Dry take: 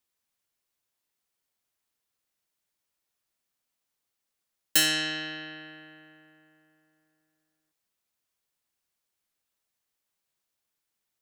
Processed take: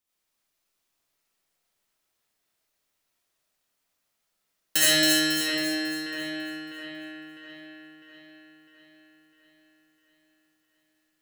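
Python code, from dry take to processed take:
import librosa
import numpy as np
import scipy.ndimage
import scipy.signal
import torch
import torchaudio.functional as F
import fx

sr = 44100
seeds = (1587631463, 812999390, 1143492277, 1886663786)

y = fx.echo_split(x, sr, split_hz=2900.0, low_ms=653, high_ms=274, feedback_pct=52, wet_db=-5)
y = fx.rev_freeverb(y, sr, rt60_s=1.4, hf_ratio=0.7, predelay_ms=30, drr_db=-8.5)
y = y * librosa.db_to_amplitude(-3.0)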